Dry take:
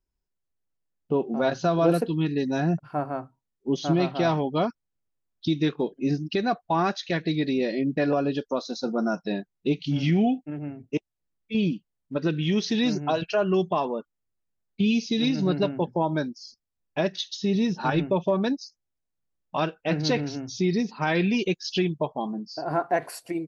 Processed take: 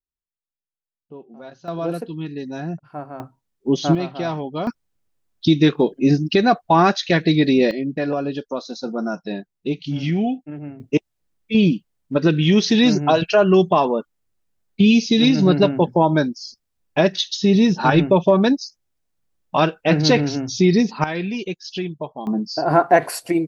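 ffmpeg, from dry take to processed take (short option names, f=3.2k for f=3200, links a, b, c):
-af "asetnsamples=n=441:p=0,asendcmd='1.68 volume volume -4dB;3.2 volume volume 7dB;3.95 volume volume -1.5dB;4.67 volume volume 9.5dB;7.71 volume volume 1dB;10.8 volume volume 9dB;21.04 volume volume -2dB;22.27 volume volume 10.5dB',volume=-15dB"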